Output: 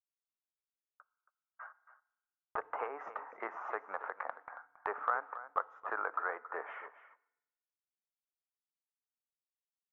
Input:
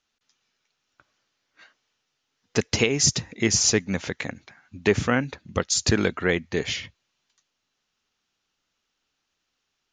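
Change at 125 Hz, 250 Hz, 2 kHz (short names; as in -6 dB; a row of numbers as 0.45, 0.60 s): under -40 dB, -32.5 dB, -13.0 dB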